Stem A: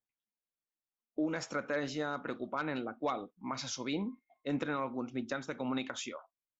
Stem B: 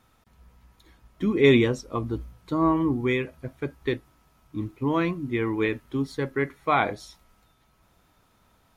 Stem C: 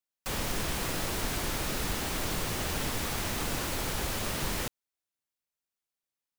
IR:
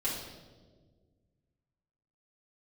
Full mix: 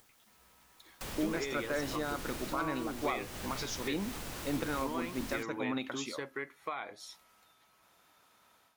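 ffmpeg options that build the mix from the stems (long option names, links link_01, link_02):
-filter_complex "[0:a]acompressor=mode=upward:threshold=-42dB:ratio=2.5,volume=-0.5dB[link_01];[1:a]highpass=frequency=810:poles=1,alimiter=limit=-17dB:level=0:latency=1:release=461,dynaudnorm=framelen=180:gausssize=3:maxgain=10.5dB,volume=-9dB[link_02];[2:a]adelay=750,volume=-6dB[link_03];[link_02][link_03]amix=inputs=2:normalize=0,acompressor=threshold=-39dB:ratio=3,volume=0dB[link_04];[link_01][link_04]amix=inputs=2:normalize=0"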